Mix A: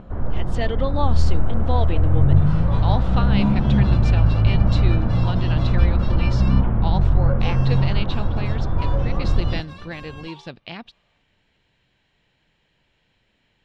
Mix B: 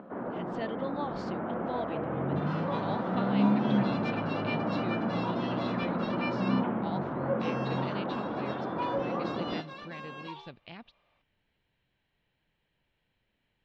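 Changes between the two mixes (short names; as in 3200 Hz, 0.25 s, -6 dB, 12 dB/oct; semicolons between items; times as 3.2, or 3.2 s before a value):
speech -10.5 dB; first sound: add HPF 220 Hz 24 dB/oct; master: add air absorption 120 m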